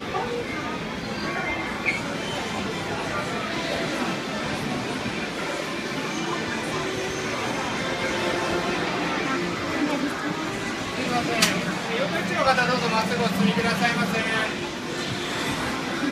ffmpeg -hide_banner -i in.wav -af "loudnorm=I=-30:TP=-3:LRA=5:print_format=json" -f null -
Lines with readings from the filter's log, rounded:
"input_i" : "-25.2",
"input_tp" : "-2.3",
"input_lra" : "4.5",
"input_thresh" : "-35.2",